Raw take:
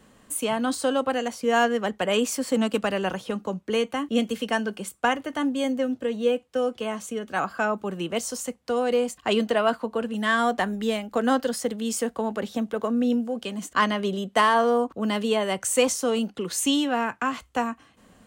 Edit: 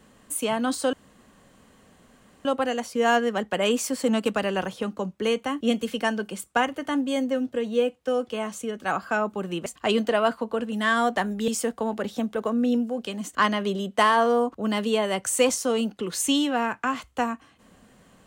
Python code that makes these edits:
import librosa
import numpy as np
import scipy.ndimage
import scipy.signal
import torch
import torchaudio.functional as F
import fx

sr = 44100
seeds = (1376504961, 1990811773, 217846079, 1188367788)

y = fx.edit(x, sr, fx.insert_room_tone(at_s=0.93, length_s=1.52),
    fx.cut(start_s=8.14, length_s=0.94),
    fx.cut(start_s=10.9, length_s=0.96), tone=tone)